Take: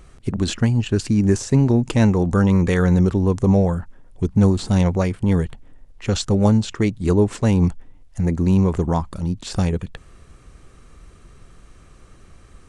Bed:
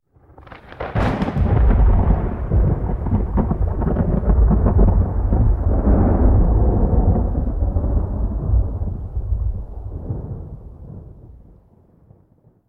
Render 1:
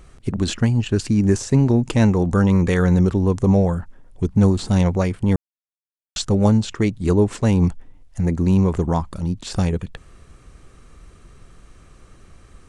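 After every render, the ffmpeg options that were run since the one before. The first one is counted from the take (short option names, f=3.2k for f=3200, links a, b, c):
-filter_complex "[0:a]asplit=3[a][b][c];[a]atrim=end=5.36,asetpts=PTS-STARTPTS,afade=t=out:st=5.356:d=0.004:c=hsin[d];[b]atrim=start=5.36:end=6.16,asetpts=PTS-STARTPTS,volume=0[e];[c]atrim=start=6.16,asetpts=PTS-STARTPTS,afade=t=in:d=0.004:c=hsin[f];[d][e][f]concat=n=3:v=0:a=1"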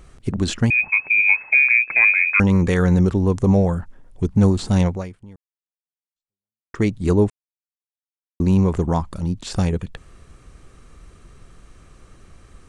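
-filter_complex "[0:a]asettb=1/sr,asplit=3[a][b][c];[a]atrim=end=0.704[d];[b]atrim=start=0.7:end=2.4,asetpts=PTS-STARTPTS,afade=t=in:d=0.004:c=qsin,afade=t=out:st=1.696:d=0.004:c=qsin,lowpass=f=2.2k:t=q:w=0.5098,lowpass=f=2.2k:t=q:w=0.6013,lowpass=f=2.2k:t=q:w=0.9,lowpass=f=2.2k:t=q:w=2.563,afreqshift=-2600[e];[c]atrim=start=2.396[f];[d][e]acrossfade=d=0.004:c1=hsin:c2=qsin[g];[g][f]acrossfade=d=0.004:c1=qsin:c2=hsin,asplit=4[h][i][j][k];[h]atrim=end=6.74,asetpts=PTS-STARTPTS,afade=t=out:st=4.84:d=1.9:c=exp[l];[i]atrim=start=6.74:end=7.3,asetpts=PTS-STARTPTS,afade=t=in:d=0.004:c=hsin,afade=t=out:st=0.556:d=0.004:c=hsin[m];[j]atrim=start=7.3:end=8.4,asetpts=PTS-STARTPTS,volume=0[n];[k]atrim=start=8.4,asetpts=PTS-STARTPTS,afade=t=in:d=0.004:c=hsin[o];[l][m][n][o]concat=n=4:v=0:a=1"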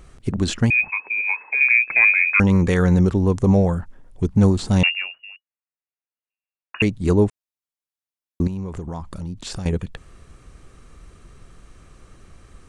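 -filter_complex "[0:a]asettb=1/sr,asplit=3[a][b][c];[a]atrim=end=0.914[d];[b]atrim=start=0.91:end=1.61,asetpts=PTS-STARTPTS,afade=t=in:d=0.004:c=qsin,afade=t=out:st=0.696:d=0.004:c=qsin,highpass=f=230:w=0.5412,highpass=f=230:w=1.3066,equalizer=f=260:t=q:w=4:g=-6,equalizer=f=440:t=q:w=4:g=4,equalizer=f=650:t=q:w=4:g=-7,equalizer=f=990:t=q:w=4:g=7,equalizer=f=1.4k:t=q:w=4:g=-5,equalizer=f=2.2k:t=q:w=4:g=-7,lowpass=f=2.5k:w=0.5412,lowpass=f=2.5k:w=1.3066[e];[c]atrim=start=1.606[f];[d][e]acrossfade=d=0.004:c1=hsin:c2=qsin[g];[g][f]acrossfade=d=0.004:c1=qsin:c2=hsin,asettb=1/sr,asplit=3[h][i][j];[h]atrim=end=4.834[k];[i]atrim=start=4.83:end=6.82,asetpts=PTS-STARTPTS,afade=t=in:d=0.004:c=qsin,afade=t=out:st=1.986:d=0.004:c=qsin,lowpass=f=2.5k:t=q:w=0.5098,lowpass=f=2.5k:t=q:w=0.6013,lowpass=f=2.5k:t=q:w=0.9,lowpass=f=2.5k:t=q:w=2.563,afreqshift=-2900[l];[j]atrim=start=6.816[m];[k][l]acrossfade=d=0.004:c1=hsin:c2=qsin[n];[n][m]acrossfade=d=0.004:c1=qsin:c2=hsin,asettb=1/sr,asplit=3[o][p][q];[o]atrim=end=8.474[r];[p]atrim=start=8.47:end=9.66,asetpts=PTS-STARTPTS,afade=t=in:d=0.004:c=qsin,afade=t=out:st=1.186:d=0.004:c=qsin,acompressor=threshold=-27dB:ratio=5:attack=3.2:release=140:knee=1:detection=peak[s];[q]atrim=start=9.656[t];[r][s]acrossfade=d=0.004:c1=hsin:c2=qsin[u];[u][t]acrossfade=d=0.004:c1=qsin:c2=hsin"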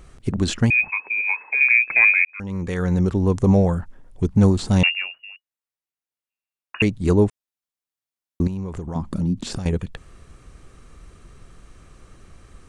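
-filter_complex "[0:a]asettb=1/sr,asplit=3[a][b][c];[a]atrim=end=8.954[d];[b]atrim=start=8.95:end=9.58,asetpts=PTS-STARTPTS,afade=t=in:d=0.004:c=qsin,afade=t=out:st=0.626:d=0.004:c=qsin,equalizer=f=230:t=o:w=1.6:g=13[e];[c]atrim=start=9.576[f];[d][e]acrossfade=d=0.004:c1=hsin:c2=qsin[g];[g][f]acrossfade=d=0.004:c1=qsin:c2=hsin,asplit=2[h][i];[h]atrim=end=2.25,asetpts=PTS-STARTPTS,afade=t=out:st=2.246:d=0.004:c=hsin[j];[i]atrim=start=2.25,asetpts=PTS-STARTPTS,afade=t=in:d=1.11[k];[j][k]concat=n=2:v=0:a=1"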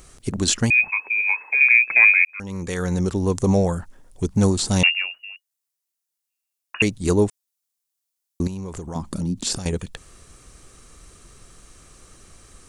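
-af "bass=f=250:g=-4,treble=f=4k:g=12"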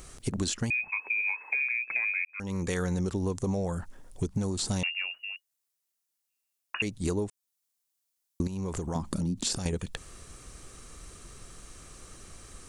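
-af "alimiter=limit=-12dB:level=0:latency=1:release=483,acompressor=threshold=-27dB:ratio=6"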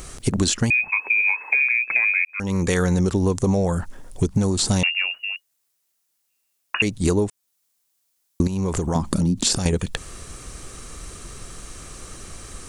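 -af "volume=10dB"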